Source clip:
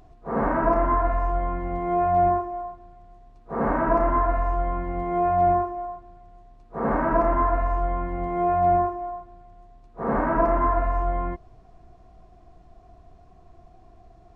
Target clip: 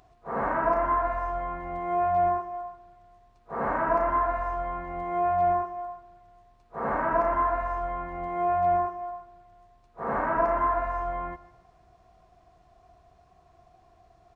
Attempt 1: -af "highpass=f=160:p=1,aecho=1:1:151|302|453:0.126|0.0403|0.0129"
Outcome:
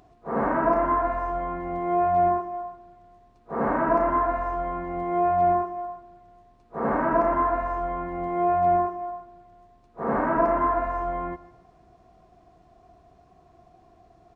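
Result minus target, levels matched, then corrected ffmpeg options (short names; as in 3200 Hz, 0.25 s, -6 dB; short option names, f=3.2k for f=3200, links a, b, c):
250 Hz band +6.0 dB
-af "highpass=f=160:p=1,equalizer=f=270:t=o:w=1.8:g=-9.5,aecho=1:1:151|302|453:0.126|0.0403|0.0129"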